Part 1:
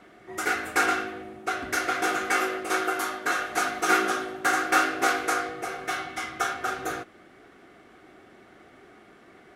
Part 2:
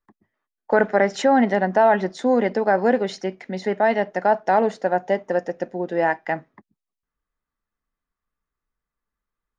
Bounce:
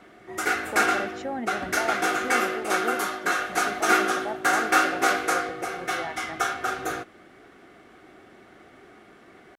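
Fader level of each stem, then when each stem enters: +1.5, −15.5 decibels; 0.00, 0.00 seconds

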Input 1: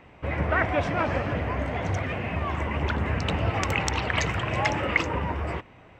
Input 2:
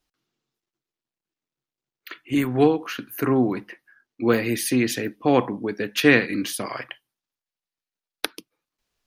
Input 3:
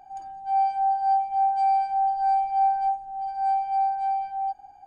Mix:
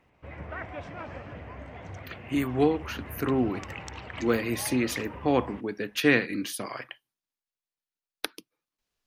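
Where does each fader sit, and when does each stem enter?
−14.0 dB, −5.5 dB, muted; 0.00 s, 0.00 s, muted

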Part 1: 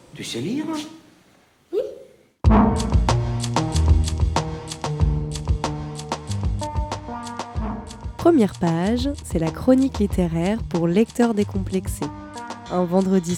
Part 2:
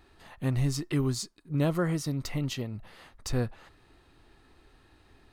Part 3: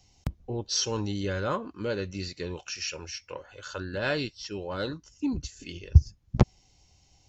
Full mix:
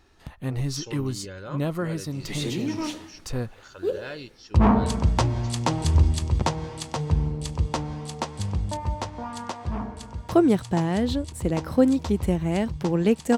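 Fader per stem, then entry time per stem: −3.0, −0.5, −8.5 decibels; 2.10, 0.00, 0.00 seconds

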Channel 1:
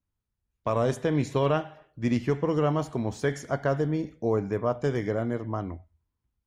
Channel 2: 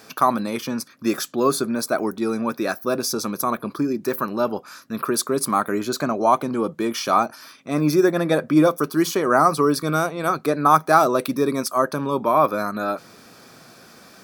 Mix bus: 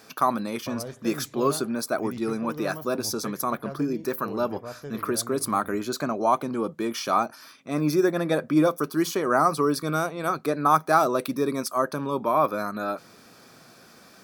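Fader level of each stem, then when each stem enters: −12.0, −4.5 decibels; 0.00, 0.00 seconds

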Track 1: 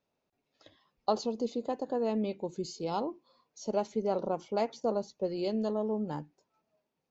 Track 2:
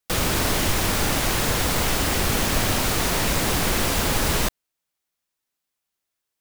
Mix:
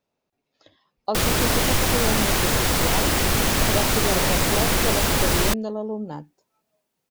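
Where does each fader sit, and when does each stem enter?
+3.0, +1.5 decibels; 0.00, 1.05 seconds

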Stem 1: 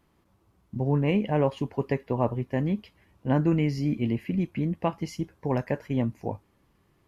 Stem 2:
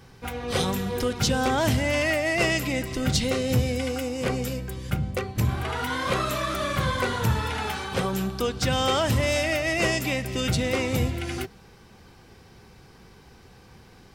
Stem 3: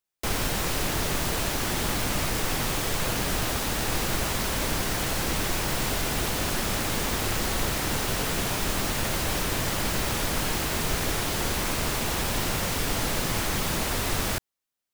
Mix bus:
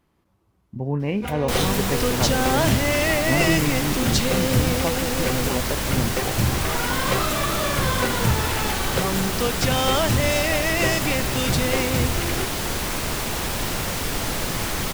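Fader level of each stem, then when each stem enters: −0.5, +2.0, +1.5 decibels; 0.00, 1.00, 1.25 seconds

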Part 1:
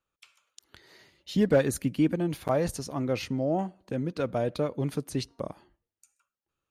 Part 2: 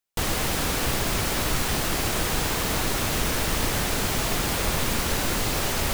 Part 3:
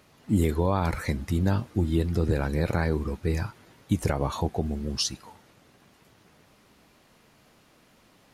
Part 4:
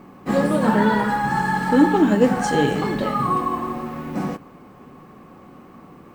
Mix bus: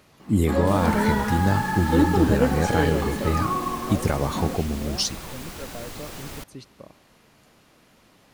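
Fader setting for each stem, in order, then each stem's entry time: −10.5, −13.0, +2.5, −5.0 decibels; 1.40, 0.50, 0.00, 0.20 seconds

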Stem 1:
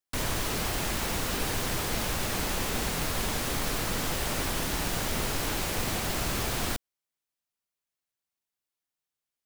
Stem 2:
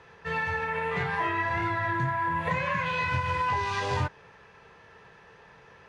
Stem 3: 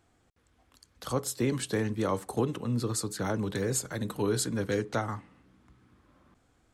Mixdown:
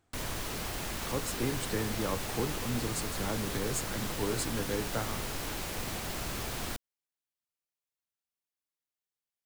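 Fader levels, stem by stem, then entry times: −6.5 dB, muted, −5.0 dB; 0.00 s, muted, 0.00 s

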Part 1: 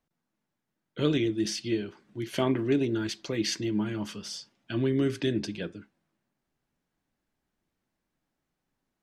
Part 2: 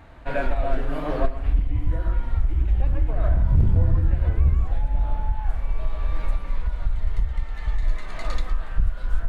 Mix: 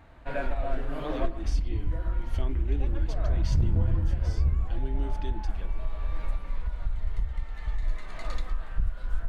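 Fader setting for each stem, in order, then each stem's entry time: −13.5, −6.0 decibels; 0.00, 0.00 seconds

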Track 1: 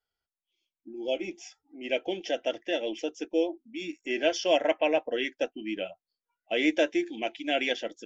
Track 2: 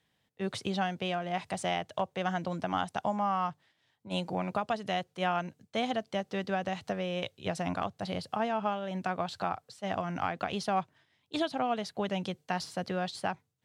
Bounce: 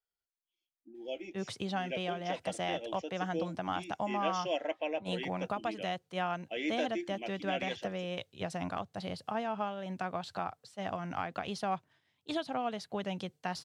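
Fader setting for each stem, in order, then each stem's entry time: −10.0, −4.0 decibels; 0.00, 0.95 seconds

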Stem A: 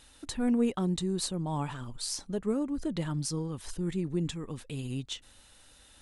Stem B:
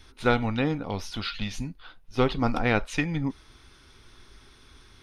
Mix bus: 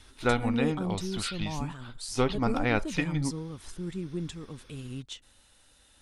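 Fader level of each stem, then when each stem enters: −3.5, −3.0 decibels; 0.00, 0.00 seconds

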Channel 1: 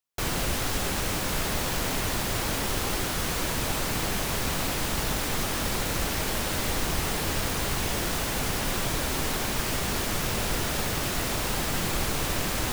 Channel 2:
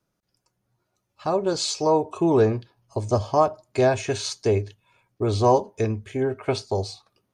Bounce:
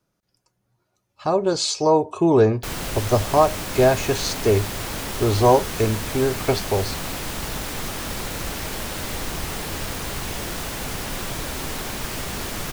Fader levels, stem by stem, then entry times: −1.0, +3.0 decibels; 2.45, 0.00 seconds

